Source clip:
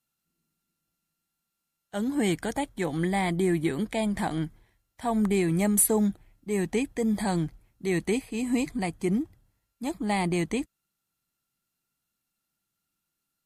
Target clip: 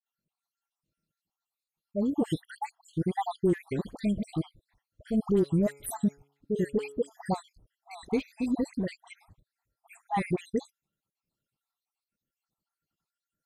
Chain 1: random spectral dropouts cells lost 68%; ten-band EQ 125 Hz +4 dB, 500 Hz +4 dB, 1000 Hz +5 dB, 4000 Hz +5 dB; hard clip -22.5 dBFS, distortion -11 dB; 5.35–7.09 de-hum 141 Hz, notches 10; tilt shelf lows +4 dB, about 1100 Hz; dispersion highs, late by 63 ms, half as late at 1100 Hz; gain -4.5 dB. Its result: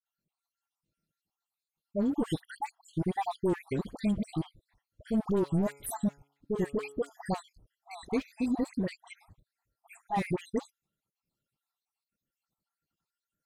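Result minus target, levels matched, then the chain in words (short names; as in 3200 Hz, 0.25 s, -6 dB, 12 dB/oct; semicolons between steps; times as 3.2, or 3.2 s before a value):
hard clip: distortion +14 dB
random spectral dropouts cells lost 68%; ten-band EQ 125 Hz +4 dB, 500 Hz +4 dB, 1000 Hz +5 dB, 4000 Hz +5 dB; hard clip -16 dBFS, distortion -25 dB; 5.35–7.09 de-hum 141 Hz, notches 10; tilt shelf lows +4 dB, about 1100 Hz; dispersion highs, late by 63 ms, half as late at 1100 Hz; gain -4.5 dB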